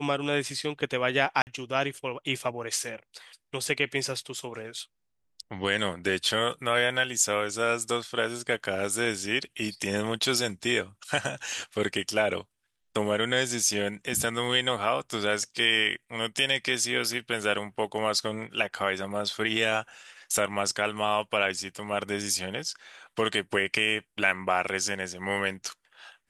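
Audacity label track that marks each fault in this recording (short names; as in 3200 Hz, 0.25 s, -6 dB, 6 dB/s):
1.420000	1.470000	gap 49 ms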